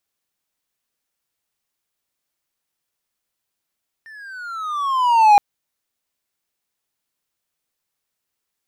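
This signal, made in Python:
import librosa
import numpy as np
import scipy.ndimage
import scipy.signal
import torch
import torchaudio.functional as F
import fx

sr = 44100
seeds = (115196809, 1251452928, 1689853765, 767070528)

y = fx.riser_tone(sr, length_s=1.32, level_db=-4, wave='triangle', hz=1810.0, rise_st=-14.0, swell_db=32.0)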